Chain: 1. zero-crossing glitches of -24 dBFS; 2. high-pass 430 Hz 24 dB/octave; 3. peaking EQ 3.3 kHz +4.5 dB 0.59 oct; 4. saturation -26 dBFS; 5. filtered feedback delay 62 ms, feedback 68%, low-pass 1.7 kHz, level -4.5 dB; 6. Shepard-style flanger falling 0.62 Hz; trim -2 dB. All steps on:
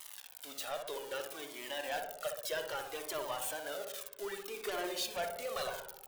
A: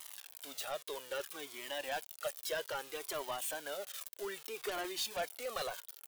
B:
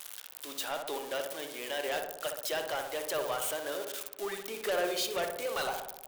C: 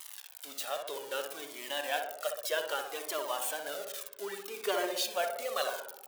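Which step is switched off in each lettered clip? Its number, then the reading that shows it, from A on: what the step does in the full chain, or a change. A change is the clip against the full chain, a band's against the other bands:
5, 8 kHz band +1.5 dB; 6, loudness change +5.0 LU; 4, distortion -9 dB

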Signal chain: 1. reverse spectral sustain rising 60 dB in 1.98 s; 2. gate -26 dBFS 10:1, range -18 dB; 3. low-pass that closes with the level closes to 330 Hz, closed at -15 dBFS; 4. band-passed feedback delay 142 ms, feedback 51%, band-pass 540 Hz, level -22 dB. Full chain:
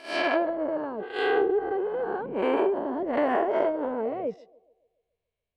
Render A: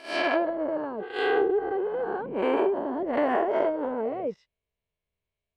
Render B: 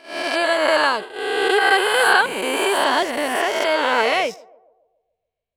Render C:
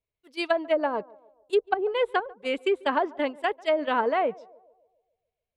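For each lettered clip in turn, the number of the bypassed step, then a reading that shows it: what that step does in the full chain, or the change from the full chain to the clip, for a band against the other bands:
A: 4, echo-to-direct -25.5 dB to none; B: 3, 250 Hz band -12.0 dB; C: 1, 250 Hz band -5.0 dB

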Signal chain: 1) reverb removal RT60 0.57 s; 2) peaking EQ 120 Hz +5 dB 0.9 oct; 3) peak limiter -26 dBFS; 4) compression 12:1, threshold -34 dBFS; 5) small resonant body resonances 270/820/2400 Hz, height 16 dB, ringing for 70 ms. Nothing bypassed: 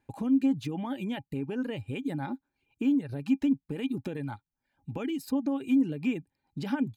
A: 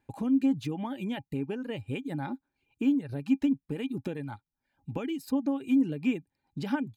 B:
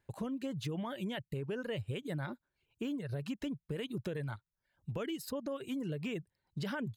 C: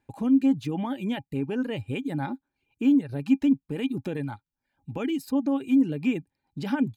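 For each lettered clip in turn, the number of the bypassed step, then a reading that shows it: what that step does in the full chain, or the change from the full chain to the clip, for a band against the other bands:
3, mean gain reduction 2.0 dB; 5, 250 Hz band -10.5 dB; 4, mean gain reduction 3.0 dB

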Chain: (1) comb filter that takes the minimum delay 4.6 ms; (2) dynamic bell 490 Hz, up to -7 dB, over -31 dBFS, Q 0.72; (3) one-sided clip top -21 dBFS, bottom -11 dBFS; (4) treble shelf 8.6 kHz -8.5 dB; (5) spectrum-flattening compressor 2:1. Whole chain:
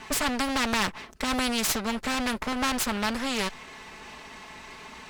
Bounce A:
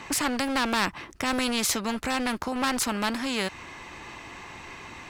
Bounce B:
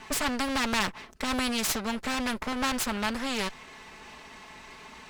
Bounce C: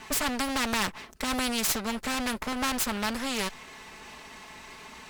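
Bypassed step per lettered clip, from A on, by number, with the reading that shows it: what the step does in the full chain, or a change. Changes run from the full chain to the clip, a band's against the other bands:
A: 1, momentary loudness spread change -2 LU; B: 3, distortion -14 dB; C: 4, 8 kHz band +2.0 dB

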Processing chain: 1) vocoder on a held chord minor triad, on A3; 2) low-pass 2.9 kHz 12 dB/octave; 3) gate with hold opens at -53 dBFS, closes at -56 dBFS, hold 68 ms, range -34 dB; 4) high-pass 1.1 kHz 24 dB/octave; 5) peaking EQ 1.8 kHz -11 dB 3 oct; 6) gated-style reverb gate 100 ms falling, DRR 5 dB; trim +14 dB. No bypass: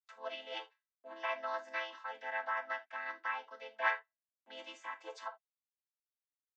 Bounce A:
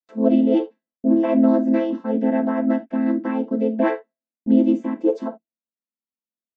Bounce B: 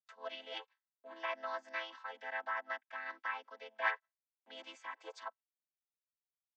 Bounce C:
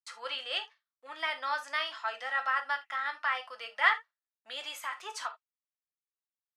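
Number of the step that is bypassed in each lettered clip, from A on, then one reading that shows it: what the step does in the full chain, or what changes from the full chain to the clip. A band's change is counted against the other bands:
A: 4, 250 Hz band +40.0 dB; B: 6, crest factor change +1.5 dB; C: 1, 500 Hz band -8.0 dB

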